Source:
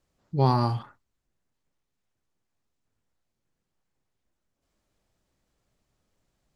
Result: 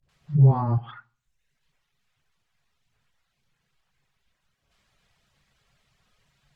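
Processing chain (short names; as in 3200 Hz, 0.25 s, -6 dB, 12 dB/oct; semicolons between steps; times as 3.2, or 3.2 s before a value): tone controls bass 0 dB, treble -15 dB; dispersion highs, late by 89 ms, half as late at 350 Hz; reverse echo 61 ms -16.5 dB; on a send at -10 dB: reverb RT60 0.40 s, pre-delay 3 ms; on the sum: reverb removal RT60 0.7 s; treble ducked by the level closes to 470 Hz, closed at -24.5 dBFS; in parallel at +2.5 dB: limiter -21 dBFS, peak gain reduction 10 dB; on the sum: EQ curve 180 Hz 0 dB, 280 Hz -9 dB, 3500 Hz +14 dB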